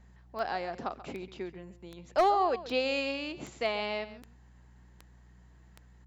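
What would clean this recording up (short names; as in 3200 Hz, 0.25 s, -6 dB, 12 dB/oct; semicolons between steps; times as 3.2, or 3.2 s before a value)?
clip repair -17.5 dBFS; de-click; de-hum 60.9 Hz, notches 3; inverse comb 0.135 s -15 dB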